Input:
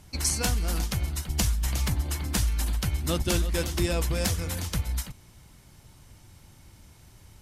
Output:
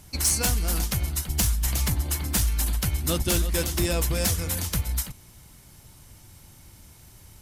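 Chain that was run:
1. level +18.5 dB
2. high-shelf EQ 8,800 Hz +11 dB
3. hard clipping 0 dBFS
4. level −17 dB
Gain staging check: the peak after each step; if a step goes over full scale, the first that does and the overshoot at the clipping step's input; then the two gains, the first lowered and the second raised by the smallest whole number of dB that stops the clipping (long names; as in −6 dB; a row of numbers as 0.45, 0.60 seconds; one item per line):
+5.0, +10.0, 0.0, −17.0 dBFS
step 1, 10.0 dB
step 1 +8.5 dB, step 4 −7 dB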